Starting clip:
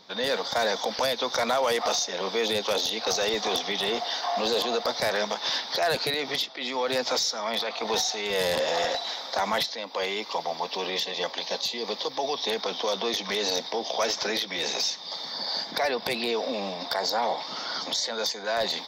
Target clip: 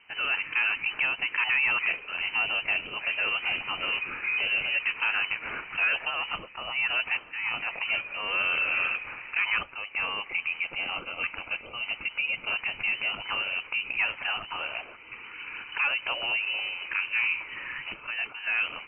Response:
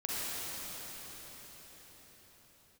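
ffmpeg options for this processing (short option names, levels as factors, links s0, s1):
-af "lowpass=f=2700:t=q:w=0.5098,lowpass=f=2700:t=q:w=0.6013,lowpass=f=2700:t=q:w=0.9,lowpass=f=2700:t=q:w=2.563,afreqshift=-3200" -ar 44100 -c:a libmp3lame -b:a 80k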